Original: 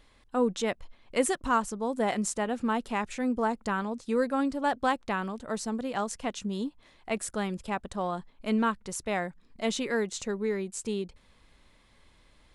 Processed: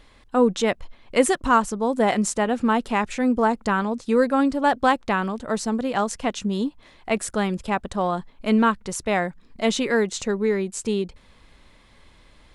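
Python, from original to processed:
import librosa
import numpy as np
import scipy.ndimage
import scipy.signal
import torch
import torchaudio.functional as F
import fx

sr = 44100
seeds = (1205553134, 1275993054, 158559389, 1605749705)

y = fx.high_shelf(x, sr, hz=7600.0, db=-5.0)
y = y * 10.0 ** (8.0 / 20.0)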